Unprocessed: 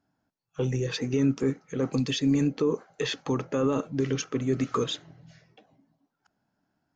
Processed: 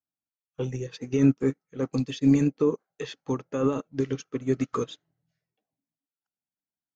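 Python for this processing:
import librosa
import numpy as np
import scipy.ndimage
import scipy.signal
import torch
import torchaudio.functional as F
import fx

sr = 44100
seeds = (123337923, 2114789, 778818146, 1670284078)

y = fx.upward_expand(x, sr, threshold_db=-42.0, expansion=2.5)
y = y * librosa.db_to_amplitude(5.5)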